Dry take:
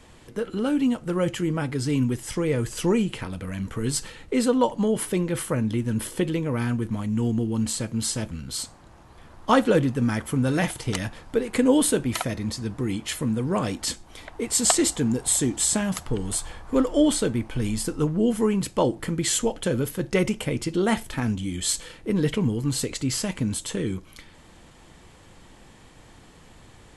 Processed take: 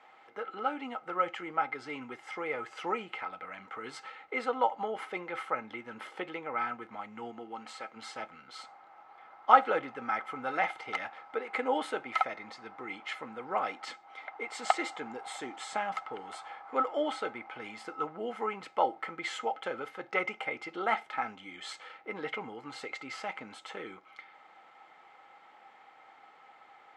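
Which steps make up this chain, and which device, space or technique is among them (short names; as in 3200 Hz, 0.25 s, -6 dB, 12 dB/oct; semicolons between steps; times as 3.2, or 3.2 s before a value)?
7.3–7.95 HPF 140 Hz -> 450 Hz 6 dB/oct; tin-can telephone (BPF 670–2400 Hz; small resonant body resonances 800/1300/2100 Hz, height 16 dB, ringing for 55 ms); gain -4.5 dB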